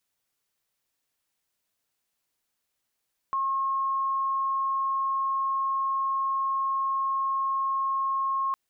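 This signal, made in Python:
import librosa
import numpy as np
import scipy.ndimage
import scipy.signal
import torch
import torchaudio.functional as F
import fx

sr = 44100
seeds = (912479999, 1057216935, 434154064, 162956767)

y = 10.0 ** (-24.0 / 20.0) * np.sin(2.0 * np.pi * (1080.0 * (np.arange(round(5.21 * sr)) / sr)))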